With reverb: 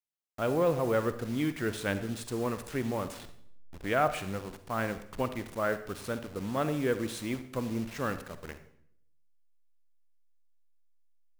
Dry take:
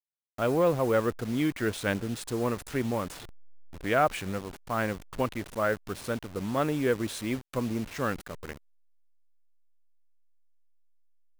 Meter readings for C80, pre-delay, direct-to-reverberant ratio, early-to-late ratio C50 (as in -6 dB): 14.5 dB, 40 ms, 10.5 dB, 11.5 dB